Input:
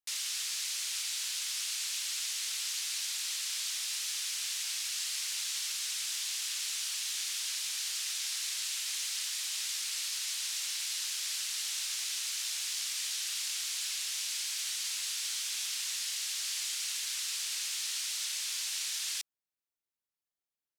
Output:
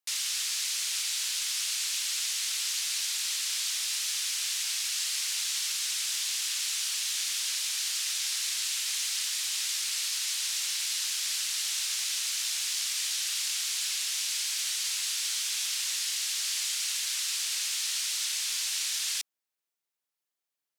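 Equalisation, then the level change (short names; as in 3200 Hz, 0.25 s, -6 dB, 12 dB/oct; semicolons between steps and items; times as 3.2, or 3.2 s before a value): HPF 320 Hz 6 dB/oct; +4.5 dB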